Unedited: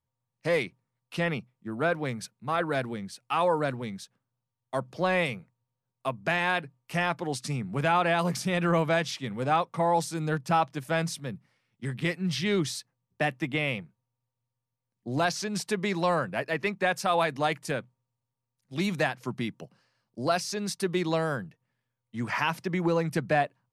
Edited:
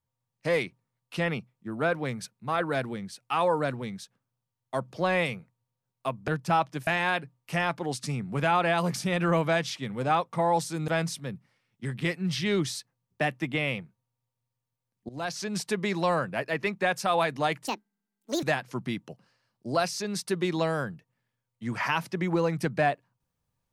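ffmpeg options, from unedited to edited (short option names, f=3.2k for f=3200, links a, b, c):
-filter_complex "[0:a]asplit=7[a][b][c][d][e][f][g];[a]atrim=end=6.282[h];[b]atrim=start=10.288:end=10.882[i];[c]atrim=start=6.278:end=10.292[j];[d]atrim=start=10.878:end=15.09,asetpts=PTS-STARTPTS,afade=t=out:st=4.208:d=0.004:c=hsin:silence=0.125893[k];[e]atrim=start=15.09:end=17.674,asetpts=PTS-STARTPTS,afade=t=in:d=0.41:silence=0.125893[l];[f]atrim=start=17.67:end=18.95,asetpts=PTS-STARTPTS,asetrate=74529,aresample=44100,atrim=end_sample=33401,asetpts=PTS-STARTPTS[m];[g]atrim=start=18.946[n];[h][i]acrossfade=d=0.004:c1=hsin:c2=hsin[o];[o][j]acrossfade=d=0.004:c1=hsin:c2=hsin[p];[k][l]concat=n=2:v=0:a=1[q];[p][q]acrossfade=d=0.004:c1=hsin:c2=hsin[r];[r][m]acrossfade=d=0.004:c1=hsin:c2=hsin[s];[s][n]acrossfade=d=0.004:c1=hsin:c2=hsin"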